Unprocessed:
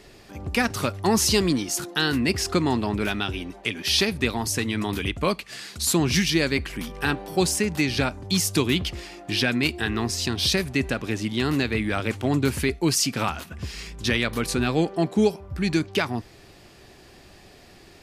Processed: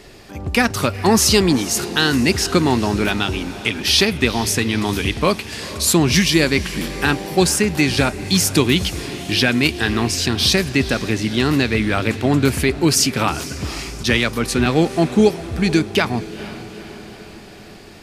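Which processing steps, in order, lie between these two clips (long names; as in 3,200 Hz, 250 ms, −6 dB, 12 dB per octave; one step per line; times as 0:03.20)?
feedback delay with all-pass diffusion 460 ms, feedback 60%, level −15 dB
0:14.03–0:14.66: multiband upward and downward expander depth 70%
level +6.5 dB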